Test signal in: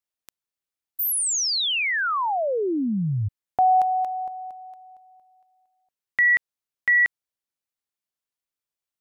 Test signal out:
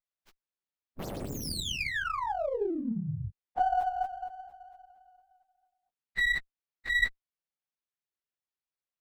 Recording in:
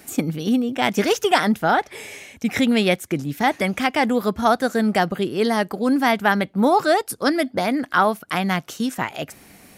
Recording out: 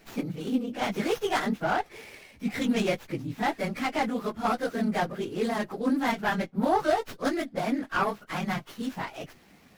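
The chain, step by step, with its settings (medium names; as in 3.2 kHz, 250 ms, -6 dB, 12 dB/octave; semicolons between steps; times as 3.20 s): phase randomisation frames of 50 ms; sliding maximum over 5 samples; trim -8.5 dB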